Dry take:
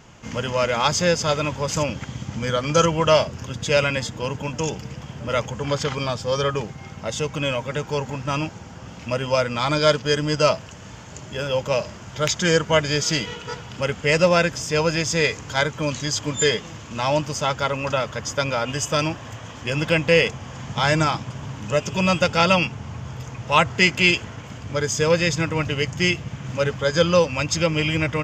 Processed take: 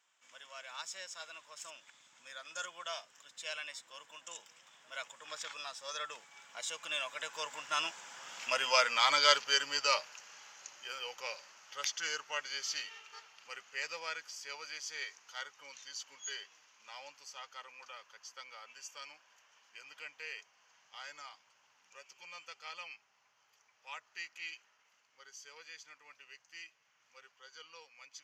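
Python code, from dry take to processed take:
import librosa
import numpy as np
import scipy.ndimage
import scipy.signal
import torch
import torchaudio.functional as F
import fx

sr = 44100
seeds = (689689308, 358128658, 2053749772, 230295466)

y = fx.doppler_pass(x, sr, speed_mps=24, closest_m=17.0, pass_at_s=8.65)
y = scipy.signal.sosfilt(scipy.signal.butter(2, 1200.0, 'highpass', fs=sr, output='sos'), y)
y = fx.high_shelf(y, sr, hz=8200.0, db=4.0)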